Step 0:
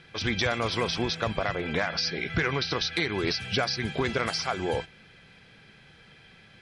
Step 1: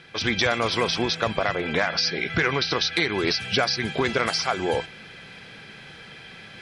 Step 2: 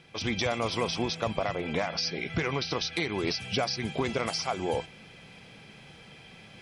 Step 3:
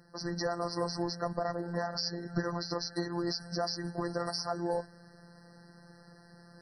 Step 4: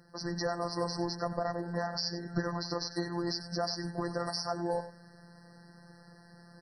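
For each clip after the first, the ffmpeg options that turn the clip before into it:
ffmpeg -i in.wav -af "lowshelf=frequency=120:gain=-9.5,areverse,acompressor=mode=upward:threshold=-40dB:ratio=2.5,areverse,volume=5dB" out.wav
ffmpeg -i in.wav -af "equalizer=frequency=400:width_type=o:width=0.67:gain=-3,equalizer=frequency=1600:width_type=o:width=0.67:gain=-11,equalizer=frequency=4000:width_type=o:width=0.67:gain=-6,volume=-3dB" out.wav
ffmpeg -i in.wav -af "afftfilt=real='hypot(re,im)*cos(PI*b)':imag='0':win_size=1024:overlap=0.75,afftfilt=real='re*eq(mod(floor(b*sr/1024/2000),2),0)':imag='im*eq(mod(floor(b*sr/1024/2000),2),0)':win_size=1024:overlap=0.75" out.wav
ffmpeg -i in.wav -af "aecho=1:1:94:0.211" out.wav

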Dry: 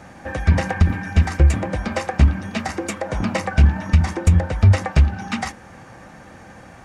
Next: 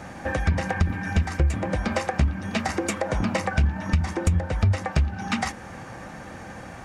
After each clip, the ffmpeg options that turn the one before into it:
ffmpeg -i in.wav -af "acompressor=threshold=-26dB:ratio=2.5,volume=3dB" out.wav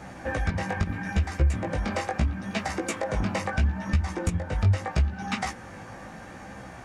ffmpeg -i in.wav -af "flanger=delay=15:depth=5.1:speed=0.76" out.wav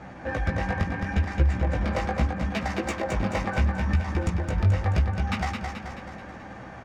ffmpeg -i in.wav -filter_complex "[0:a]adynamicsmooth=sensitivity=4:basefreq=4100,asplit=2[link_01][link_02];[link_02]aecho=0:1:216|432|648|864|1080|1296|1512:0.562|0.298|0.158|0.0837|0.0444|0.0235|0.0125[link_03];[link_01][link_03]amix=inputs=2:normalize=0" out.wav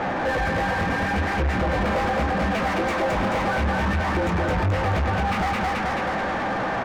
ffmpeg -i in.wav -filter_complex "[0:a]alimiter=limit=-19dB:level=0:latency=1:release=106,asplit=2[link_01][link_02];[link_02]highpass=frequency=720:poles=1,volume=32dB,asoftclip=type=tanh:threshold=-19dB[link_03];[link_01][link_03]amix=inputs=2:normalize=0,lowpass=frequency=1100:poles=1,volume=-6dB,volume=4dB" out.wav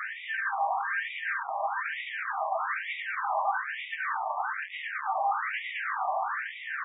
ffmpeg -i in.wav -af "adynamicsmooth=sensitivity=2:basefreq=3400,afftfilt=real='re*between(b*sr/1024,830*pow(2700/830,0.5+0.5*sin(2*PI*1.1*pts/sr))/1.41,830*pow(2700/830,0.5+0.5*sin(2*PI*1.1*pts/sr))*1.41)':imag='im*between(b*sr/1024,830*pow(2700/830,0.5+0.5*sin(2*PI*1.1*pts/sr))/1.41,830*pow(2700/830,0.5+0.5*sin(2*PI*1.1*pts/sr))*1.41)':win_size=1024:overlap=0.75" out.wav

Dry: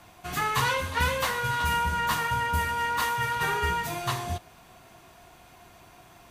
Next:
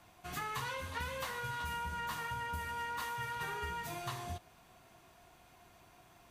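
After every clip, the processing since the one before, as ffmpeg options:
ffmpeg -i in.wav -af "acompressor=threshold=-27dB:ratio=6,volume=-9dB" out.wav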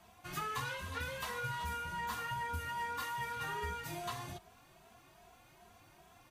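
ffmpeg -i in.wav -filter_complex "[0:a]asplit=2[link_01][link_02];[link_02]adelay=2.7,afreqshift=2.5[link_03];[link_01][link_03]amix=inputs=2:normalize=1,volume=3dB" out.wav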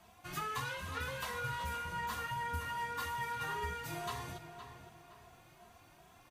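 ffmpeg -i in.wav -filter_complex "[0:a]asplit=2[link_01][link_02];[link_02]adelay=515,lowpass=frequency=3500:poles=1,volume=-10dB,asplit=2[link_03][link_04];[link_04]adelay=515,lowpass=frequency=3500:poles=1,volume=0.37,asplit=2[link_05][link_06];[link_06]adelay=515,lowpass=frequency=3500:poles=1,volume=0.37,asplit=2[link_07][link_08];[link_08]adelay=515,lowpass=frequency=3500:poles=1,volume=0.37[link_09];[link_01][link_03][link_05][link_07][link_09]amix=inputs=5:normalize=0" out.wav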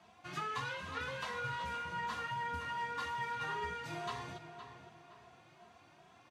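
ffmpeg -i in.wav -af "highpass=120,lowpass=5400" out.wav

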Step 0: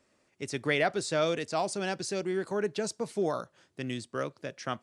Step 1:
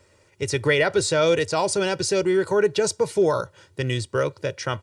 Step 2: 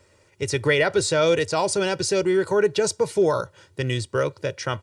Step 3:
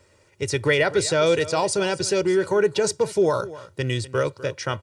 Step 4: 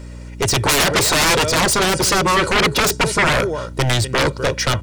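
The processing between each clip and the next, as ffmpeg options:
ffmpeg -i in.wav -filter_complex "[0:a]asplit=2[link_01][link_02];[link_02]alimiter=limit=-23.5dB:level=0:latency=1,volume=2.5dB[link_03];[link_01][link_03]amix=inputs=2:normalize=0,equalizer=frequency=90:width=2:gain=13,aecho=1:1:2.1:0.63,volume=2dB" out.wav
ffmpeg -i in.wav -af anull out.wav
ffmpeg -i in.wav -af "aecho=1:1:249:0.141" out.wav
ffmpeg -i in.wav -af "aeval=exprs='0.473*(cos(1*acos(clip(val(0)/0.473,-1,1)))-cos(1*PI/2))+0.15*(cos(7*acos(clip(val(0)/0.473,-1,1)))-cos(7*PI/2))':channel_layout=same,aeval=exprs='0.473*sin(PI/2*3.55*val(0)/0.473)':channel_layout=same,aeval=exprs='val(0)+0.0355*(sin(2*PI*60*n/s)+sin(2*PI*2*60*n/s)/2+sin(2*PI*3*60*n/s)/3+sin(2*PI*4*60*n/s)/4+sin(2*PI*5*60*n/s)/5)':channel_layout=same,volume=-3dB" out.wav

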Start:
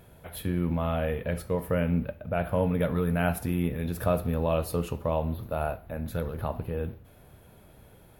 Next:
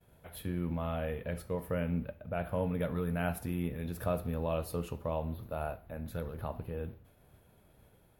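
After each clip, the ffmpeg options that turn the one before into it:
ffmpeg -i in.wav -af "agate=range=-33dB:threshold=-50dB:ratio=3:detection=peak,volume=-7dB" out.wav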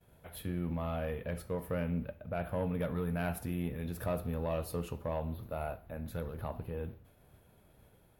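ffmpeg -i in.wav -af "asoftclip=type=tanh:threshold=-24.5dB" out.wav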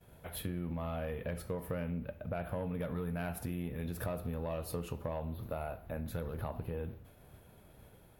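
ffmpeg -i in.wav -af "acompressor=threshold=-39dB:ratio=6,volume=4.5dB" out.wav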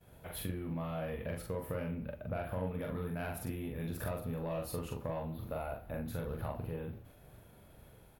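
ffmpeg -i in.wav -filter_complex "[0:a]asplit=2[link_01][link_02];[link_02]adelay=43,volume=-2.5dB[link_03];[link_01][link_03]amix=inputs=2:normalize=0,volume=-1.5dB" out.wav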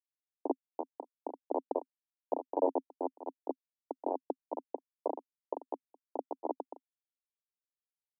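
ffmpeg -i in.wav -af "acrusher=bits=4:mix=0:aa=0.000001,asuperpass=centerf=500:order=20:qfactor=0.72,volume=10dB" out.wav

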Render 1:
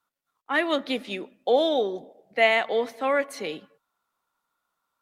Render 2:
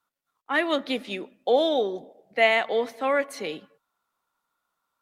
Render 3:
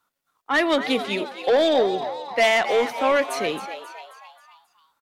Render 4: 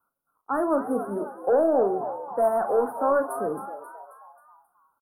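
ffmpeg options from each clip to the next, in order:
ffmpeg -i in.wav -af anull out.wav
ffmpeg -i in.wav -filter_complex "[0:a]asoftclip=type=tanh:threshold=-19.5dB,asplit=2[link_01][link_02];[link_02]asplit=5[link_03][link_04][link_05][link_06][link_07];[link_03]adelay=268,afreqshift=130,volume=-11dB[link_08];[link_04]adelay=536,afreqshift=260,volume=-17dB[link_09];[link_05]adelay=804,afreqshift=390,volume=-23dB[link_10];[link_06]adelay=1072,afreqshift=520,volume=-29.1dB[link_11];[link_07]adelay=1340,afreqshift=650,volume=-35.1dB[link_12];[link_08][link_09][link_10][link_11][link_12]amix=inputs=5:normalize=0[link_13];[link_01][link_13]amix=inputs=2:normalize=0,volume=6.5dB" out.wav
ffmpeg -i in.wav -filter_complex "[0:a]asuperstop=centerf=3900:order=20:qfactor=0.51,asplit=2[link_01][link_02];[link_02]adelay=40,volume=-10dB[link_03];[link_01][link_03]amix=inputs=2:normalize=0,volume=-2.5dB" out.wav

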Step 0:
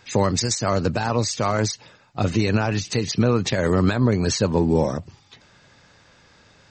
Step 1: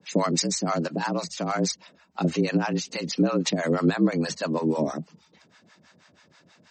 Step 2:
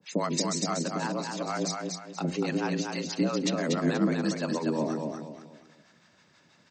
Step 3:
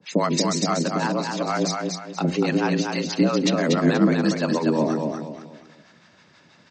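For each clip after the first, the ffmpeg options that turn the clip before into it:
ffmpeg -i in.wav -filter_complex "[0:a]acrossover=split=540[link_01][link_02];[link_01]aeval=exprs='val(0)*(1-1/2+1/2*cos(2*PI*6.2*n/s))':channel_layout=same[link_03];[link_02]aeval=exprs='val(0)*(1-1/2-1/2*cos(2*PI*6.2*n/s))':channel_layout=same[link_04];[link_03][link_04]amix=inputs=2:normalize=0,afreqshift=72" out.wav
ffmpeg -i in.wav -filter_complex "[0:a]bandreject=frequency=89.16:width_type=h:width=4,bandreject=frequency=178.32:width_type=h:width=4,bandreject=frequency=267.48:width_type=h:width=4,bandreject=frequency=356.64:width_type=h:width=4,bandreject=frequency=445.8:width_type=h:width=4,bandreject=frequency=534.96:width_type=h:width=4,bandreject=frequency=624.12:width_type=h:width=4,bandreject=frequency=713.28:width_type=h:width=4,bandreject=frequency=802.44:width_type=h:width=4,bandreject=frequency=891.6:width_type=h:width=4,bandreject=frequency=980.76:width_type=h:width=4,asplit=2[link_01][link_02];[link_02]aecho=0:1:240|480|720|960:0.631|0.215|0.0729|0.0248[link_03];[link_01][link_03]amix=inputs=2:normalize=0,volume=-5dB" out.wav
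ffmpeg -i in.wav -af "lowpass=6000,volume=7.5dB" out.wav

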